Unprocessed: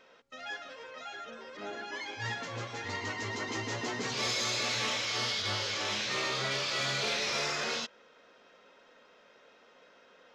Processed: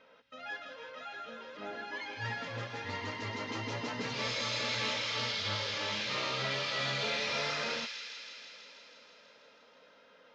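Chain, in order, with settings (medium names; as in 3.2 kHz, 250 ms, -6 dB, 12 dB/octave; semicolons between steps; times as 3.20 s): Bessel low-pass 4 kHz, order 4; comb of notches 370 Hz; on a send: feedback echo behind a high-pass 162 ms, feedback 75%, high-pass 2.4 kHz, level -5 dB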